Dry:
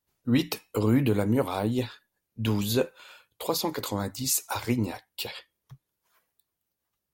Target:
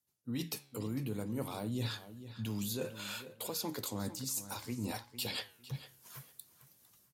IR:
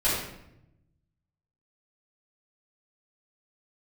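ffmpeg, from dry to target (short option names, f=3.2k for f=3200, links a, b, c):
-filter_complex "[0:a]highpass=120,bass=f=250:g=8,treble=f=4k:g=10,dynaudnorm=f=160:g=3:m=15.5dB,alimiter=limit=-7dB:level=0:latency=1:release=293,areverse,acompressor=threshold=-34dB:ratio=4,areverse,flanger=delay=8.1:depth=7.1:regen=88:speed=0.58:shape=sinusoidal,asplit=2[a][b];[b]adelay=453,lowpass=f=4.3k:p=1,volume=-13dB,asplit=2[c][d];[d]adelay=453,lowpass=f=4.3k:p=1,volume=0.22,asplit=2[e][f];[f]adelay=453,lowpass=f=4.3k:p=1,volume=0.22[g];[c][e][g]amix=inputs=3:normalize=0[h];[a][h]amix=inputs=2:normalize=0,aresample=32000,aresample=44100"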